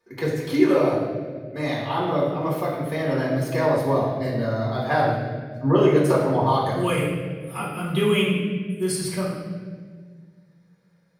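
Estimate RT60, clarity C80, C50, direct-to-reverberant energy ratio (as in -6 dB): 1.6 s, 4.0 dB, 1.5 dB, -6.5 dB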